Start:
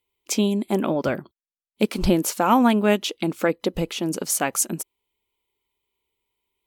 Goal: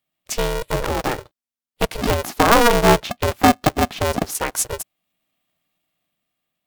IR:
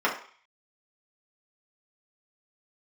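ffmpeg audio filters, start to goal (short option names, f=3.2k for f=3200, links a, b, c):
-filter_complex "[0:a]asettb=1/sr,asplit=3[a][b][c];[a]atrim=end=2.224[d];[b]atrim=start=2.22:end=4.35,asetpts=PTS-STARTPTS,afade=t=in:d=0.004:c=qsin,afade=t=out:st=2.126:d=0.004:c=qsin,equalizer=f=125:t=o:w=1:g=8,equalizer=f=500:t=o:w=1:g=11,equalizer=f=1k:t=o:w=1:g=4,equalizer=f=8k:t=o:w=1:g=-9[e];[c]atrim=start=4.346[f];[d][e]acrossfade=d=0.004:c1=hsin:c2=qsin[g];[g][f]acrossfade=d=0.004:c1=qsin:c2=hsin,dynaudnorm=f=480:g=5:m=11.5dB,aeval=exprs='val(0)*sgn(sin(2*PI*240*n/s))':c=same,volume=-1dB"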